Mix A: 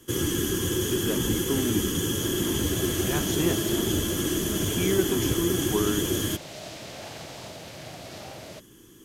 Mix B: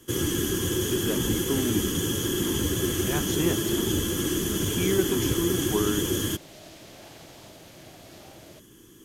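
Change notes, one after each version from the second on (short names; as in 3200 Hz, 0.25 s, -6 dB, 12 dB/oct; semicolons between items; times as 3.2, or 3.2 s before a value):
second sound -8.0 dB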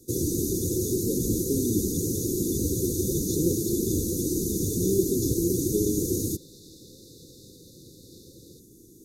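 master: add brick-wall FIR band-stop 540–3500 Hz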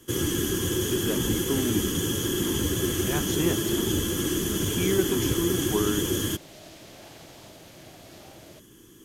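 master: remove brick-wall FIR band-stop 540–3500 Hz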